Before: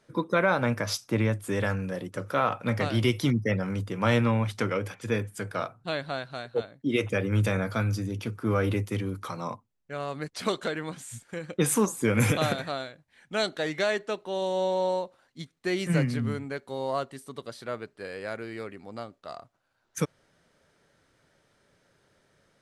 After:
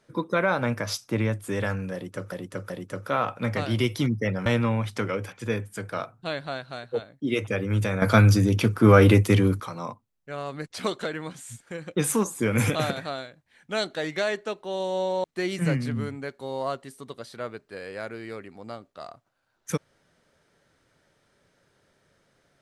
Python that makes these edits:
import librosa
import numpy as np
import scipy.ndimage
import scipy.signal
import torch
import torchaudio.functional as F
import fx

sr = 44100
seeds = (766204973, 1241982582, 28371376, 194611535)

y = fx.edit(x, sr, fx.repeat(start_s=1.94, length_s=0.38, count=3),
    fx.cut(start_s=3.7, length_s=0.38),
    fx.clip_gain(start_s=7.64, length_s=1.58, db=11.0),
    fx.cut(start_s=14.86, length_s=0.66), tone=tone)